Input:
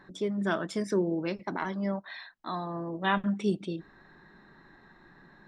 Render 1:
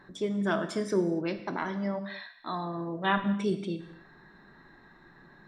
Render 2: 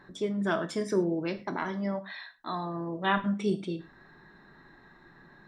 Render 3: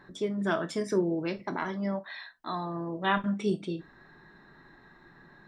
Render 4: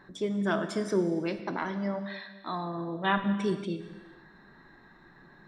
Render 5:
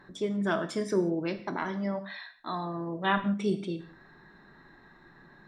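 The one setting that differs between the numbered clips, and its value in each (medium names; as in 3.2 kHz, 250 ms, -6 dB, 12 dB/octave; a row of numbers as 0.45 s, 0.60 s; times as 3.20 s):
gated-style reverb, gate: 310 ms, 140 ms, 90 ms, 520 ms, 200 ms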